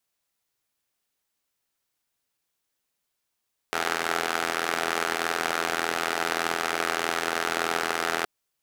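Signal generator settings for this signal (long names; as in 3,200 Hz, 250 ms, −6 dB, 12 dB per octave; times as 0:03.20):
pulse-train model of a four-cylinder engine, steady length 4.52 s, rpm 2,500, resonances 430/740/1,300 Hz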